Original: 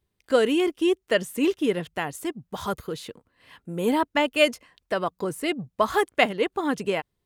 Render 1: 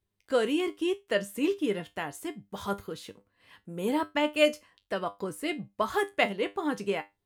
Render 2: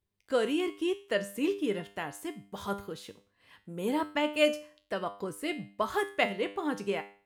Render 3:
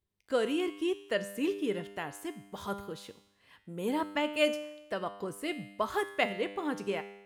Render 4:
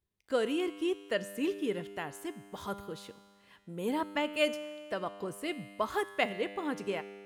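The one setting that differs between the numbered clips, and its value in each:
feedback comb, decay: 0.2 s, 0.43 s, 0.94 s, 2 s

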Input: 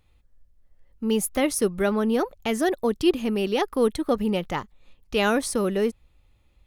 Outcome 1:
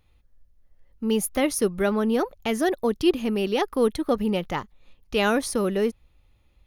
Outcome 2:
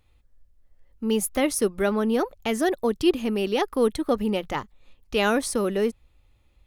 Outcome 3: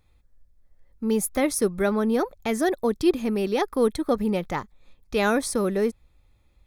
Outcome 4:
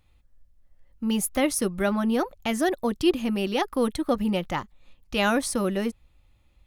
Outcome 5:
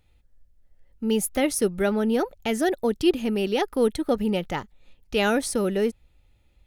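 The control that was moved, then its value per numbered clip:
band-stop, frequency: 7.8 kHz, 170 Hz, 2.9 kHz, 430 Hz, 1.1 kHz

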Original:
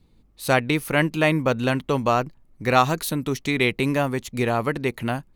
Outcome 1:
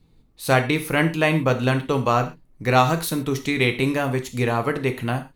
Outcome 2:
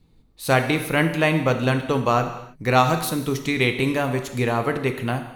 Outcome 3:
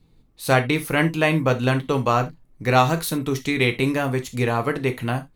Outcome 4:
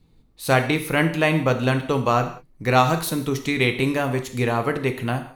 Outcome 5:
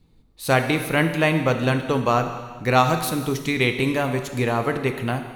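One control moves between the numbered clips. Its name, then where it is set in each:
gated-style reverb, gate: 150 ms, 350 ms, 100 ms, 220 ms, 510 ms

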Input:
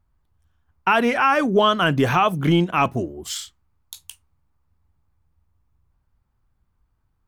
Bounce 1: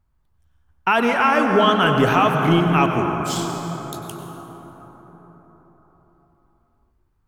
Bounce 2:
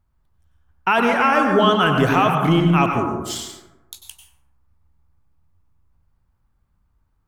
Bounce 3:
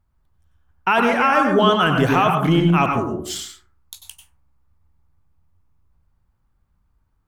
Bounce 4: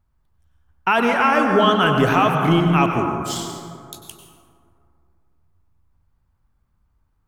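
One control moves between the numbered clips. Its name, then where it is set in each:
plate-style reverb, RT60: 5 s, 1.1 s, 0.51 s, 2.4 s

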